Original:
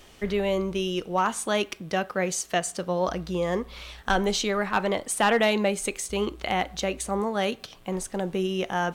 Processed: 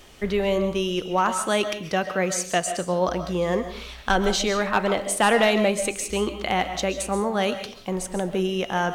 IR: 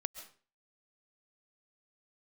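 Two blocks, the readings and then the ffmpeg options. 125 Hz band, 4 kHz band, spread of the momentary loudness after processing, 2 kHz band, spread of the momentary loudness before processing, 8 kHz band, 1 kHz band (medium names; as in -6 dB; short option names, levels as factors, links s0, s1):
+2.5 dB, +3.0 dB, 7 LU, +3.0 dB, 7 LU, +3.0 dB, +3.0 dB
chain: -filter_complex "[1:a]atrim=start_sample=2205[s0];[0:a][s0]afir=irnorm=-1:irlink=0,volume=1.5"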